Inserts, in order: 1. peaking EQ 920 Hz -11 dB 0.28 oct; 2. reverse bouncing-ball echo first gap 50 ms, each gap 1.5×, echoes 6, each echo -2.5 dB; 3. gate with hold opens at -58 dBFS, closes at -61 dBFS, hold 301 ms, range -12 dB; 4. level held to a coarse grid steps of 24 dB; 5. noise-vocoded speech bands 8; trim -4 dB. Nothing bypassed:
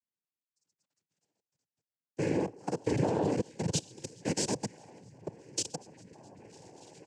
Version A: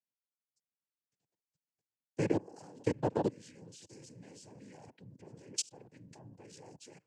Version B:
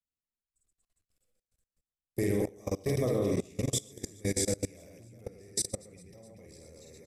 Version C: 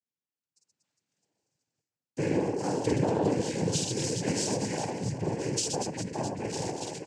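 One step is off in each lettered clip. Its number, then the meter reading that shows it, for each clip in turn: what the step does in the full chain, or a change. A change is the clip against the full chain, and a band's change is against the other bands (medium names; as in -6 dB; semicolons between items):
2, momentary loudness spread change +5 LU; 5, 1 kHz band -9.0 dB; 4, crest factor change -2.5 dB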